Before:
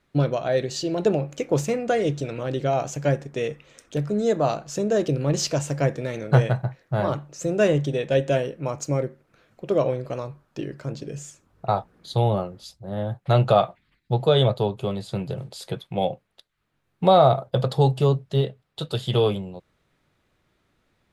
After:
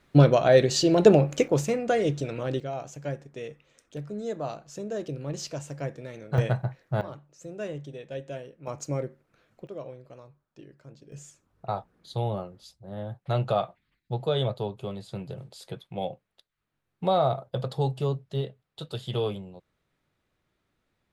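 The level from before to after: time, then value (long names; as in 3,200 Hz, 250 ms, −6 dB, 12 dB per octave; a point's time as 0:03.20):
+5 dB
from 0:01.48 −2 dB
from 0:02.60 −11 dB
from 0:06.38 −3 dB
from 0:07.01 −15.5 dB
from 0:08.67 −6 dB
from 0:09.67 −17.5 dB
from 0:11.12 −8 dB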